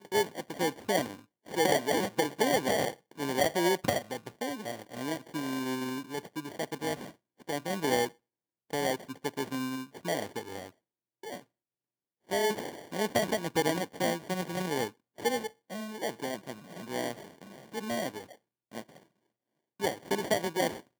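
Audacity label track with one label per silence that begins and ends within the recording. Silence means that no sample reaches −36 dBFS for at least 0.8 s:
11.400000	12.310000	silence
18.810000	19.800000	silence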